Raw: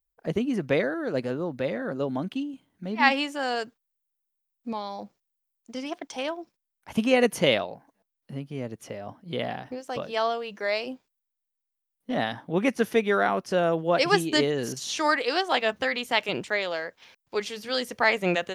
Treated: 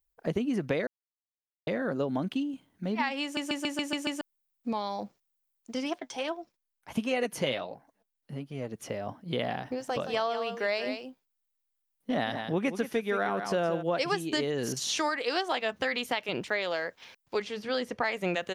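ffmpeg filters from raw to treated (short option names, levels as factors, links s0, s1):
-filter_complex "[0:a]asplit=3[s0][s1][s2];[s0]afade=t=out:st=5.95:d=0.02[s3];[s1]flanger=delay=1.4:depth=6.6:regen=47:speed=1.4:shape=sinusoidal,afade=t=in:st=5.95:d=0.02,afade=t=out:st=8.74:d=0.02[s4];[s2]afade=t=in:st=8.74:d=0.02[s5];[s3][s4][s5]amix=inputs=3:normalize=0,asplit=3[s6][s7][s8];[s6]afade=t=out:st=9.79:d=0.02[s9];[s7]aecho=1:1:171:0.316,afade=t=in:st=9.79:d=0.02,afade=t=out:st=13.81:d=0.02[s10];[s8]afade=t=in:st=13.81:d=0.02[s11];[s9][s10][s11]amix=inputs=3:normalize=0,asettb=1/sr,asplit=3[s12][s13][s14];[s12]atrim=end=16.064[s15];[s13]atrim=start=16.06:end=16.64,asetpts=PTS-STARTPTS,afade=t=in:d=0.004:c=qsin,afade=t=out:st=0.576:d=0.004:c=qsin,equalizer=f=7700:w=2.6:g=-6[s16];[s14]atrim=start=16.636[s17];[s15][s16]acrossfade=d=0.004:c1=hsin:c2=qsin[s18];[s18][s17]acrossfade=d=0.004:c1=qsin:c2=hsin,asettb=1/sr,asplit=3[s19][s20][s21];[s19]atrim=end=17.424[s22];[s20]atrim=start=17.42:end=18.04,asetpts=PTS-STARTPTS,afade=t=in:d=0.004:c=qsin,afade=t=out:st=0.616:d=0.004:c=qsin,aemphasis=mode=reproduction:type=75kf[s23];[s21]atrim=start=18.036[s24];[s22][s23]acrossfade=d=0.004:c1=hsin:c2=qsin[s25];[s25][s24]acrossfade=d=0.004:c1=qsin:c2=hsin,asplit=10[s26][s27][s28][s29][s30][s31][s32][s33][s34][s35];[s26]atrim=end=0.87,asetpts=PTS-STARTPTS,afade=t=out:st=0.866:d=0.004:c=hsin[s36];[s27]atrim=start=0.87:end=1.67,asetpts=PTS-STARTPTS,volume=0[s37];[s28]atrim=start=1.67:end=3.372,asetpts=PTS-STARTPTS,afade=t=in:d=0.004:c=hsin[s38];[s29]atrim=start=3.228:end=3.372[s39];[s30]atrim=start=3.228:end=3.372[s40];[s31]atrim=start=3.228:end=3.372[s41];[s32]atrim=start=3.228:end=3.372[s42];[s33]atrim=start=3.228:end=3.372[s43];[s34]atrim=start=3.228:end=3.372[s44];[s35]atrim=start=4.208[s45];[s36][s37][s38]concat=n=3:v=0:a=1[s46];[s46][s39]acrossfade=d=0.004:c1=hsin:c2=hsin[s47];[s47][s40]acrossfade=d=0.004:c1=hsin:c2=hsin[s48];[s48][s41]acrossfade=d=0.004:c1=hsin:c2=hsin[s49];[s49][s42]acrossfade=d=0.004:c1=hsin:c2=hsin[s50];[s50][s43]acrossfade=d=0.004:c1=hsin:c2=hsin[s51];[s51][s44]acrossfade=d=0.004:c1=hsin:c2=hsin[s52];[s52][s45]acrossfade=d=0.004:c1=hsin:c2=hsin,alimiter=limit=0.224:level=0:latency=1:release=423,acompressor=threshold=0.0355:ratio=3,volume=1.26"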